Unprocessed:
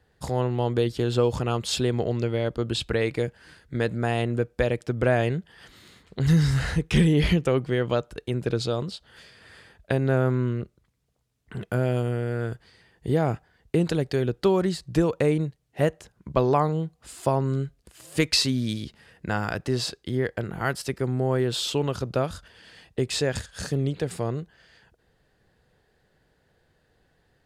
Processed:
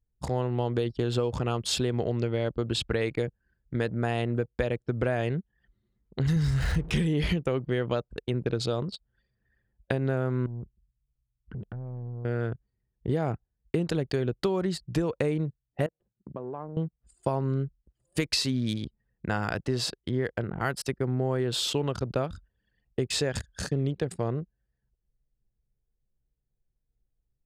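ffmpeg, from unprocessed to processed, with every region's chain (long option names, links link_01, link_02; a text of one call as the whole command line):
ffmpeg -i in.wav -filter_complex "[0:a]asettb=1/sr,asplit=3[link_01][link_02][link_03];[link_01]atrim=end=6.364[link_04];[link_02]atrim=start=6.36:end=6.91,asetpts=PTS-STARTPTS,afade=type=in:duration=0.004:curve=qsin,afade=type=out:start_time=0.546:duration=0.004:curve=qsin,aeval=exprs='val(0)+0.5*0.0211*sgn(val(0))':channel_layout=same,lowshelf=frequency=100:gain=10.5[link_05];[link_03]atrim=start=6.906[link_06];[link_04][link_05]acrossfade=duration=0.004:curve1=hsin:curve2=qsin[link_07];[link_07][link_06]acrossfade=duration=0.004:curve1=qsin:curve2=hsin,asettb=1/sr,asplit=3[link_08][link_09][link_10];[link_08]atrim=end=10.464[link_11];[link_09]atrim=start=10.46:end=12.25,asetpts=PTS-STARTPTS,afade=type=in:duration=0.004:curve=qsin,afade=type=out:start_time=1.786:duration=0.004:curve=qsin,lowshelf=frequency=160:gain=10.5,acompressor=threshold=-33dB:ratio=4:attack=3.2:release=140:knee=1:detection=peak,asoftclip=type=hard:threshold=-31.5dB[link_12];[link_10]atrim=start=12.246[link_13];[link_11][link_12]acrossfade=duration=0.004:curve1=hsin:curve2=qsin[link_14];[link_14][link_13]acrossfade=duration=0.004:curve1=qsin:curve2=hsin,asettb=1/sr,asplit=3[link_15][link_16][link_17];[link_15]atrim=end=15.864[link_18];[link_16]atrim=start=15.86:end=16.77,asetpts=PTS-STARTPTS,afade=type=in:duration=0.004:curve=qsin,afade=type=out:start_time=0.906:duration=0.004:curve=qsin,equalizer=frequency=2200:width=2:gain=-7.5,acompressor=threshold=-33dB:ratio=6:attack=3.2:release=140:knee=1:detection=peak,highpass=140,lowpass=3100[link_19];[link_17]atrim=start=16.766[link_20];[link_18][link_19]acrossfade=duration=0.004:curve1=hsin:curve2=qsin[link_21];[link_21][link_20]acrossfade=duration=0.004:curve1=qsin:curve2=hsin,anlmdn=2.51,acompressor=threshold=-23dB:ratio=6" out.wav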